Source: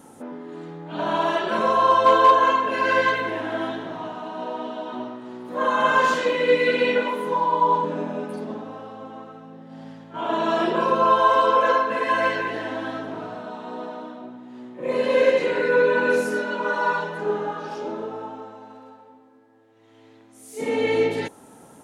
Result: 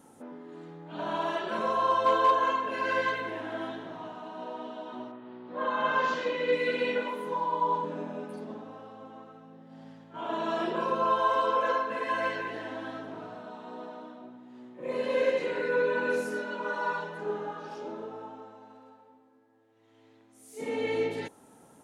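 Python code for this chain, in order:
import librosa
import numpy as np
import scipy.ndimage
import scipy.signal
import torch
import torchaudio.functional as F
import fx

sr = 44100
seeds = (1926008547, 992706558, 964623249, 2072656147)

y = fx.lowpass(x, sr, hz=fx.line((5.11, 3300.0), (6.51, 7100.0)), slope=24, at=(5.11, 6.51), fade=0.02)
y = F.gain(torch.from_numpy(y), -8.5).numpy()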